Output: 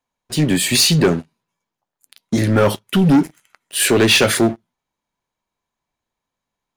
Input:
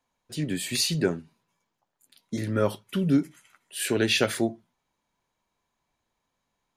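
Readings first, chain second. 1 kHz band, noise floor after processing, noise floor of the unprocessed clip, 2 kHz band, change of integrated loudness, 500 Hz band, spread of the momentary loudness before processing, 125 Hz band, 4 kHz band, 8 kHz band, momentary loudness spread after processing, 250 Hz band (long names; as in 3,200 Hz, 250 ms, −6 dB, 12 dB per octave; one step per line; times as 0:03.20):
+13.0 dB, −83 dBFS, −81 dBFS, +11.5 dB, +11.0 dB, +10.0 dB, 14 LU, +12.0 dB, +12.0 dB, +12.5 dB, 13 LU, +10.5 dB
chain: leveller curve on the samples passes 3
level +3 dB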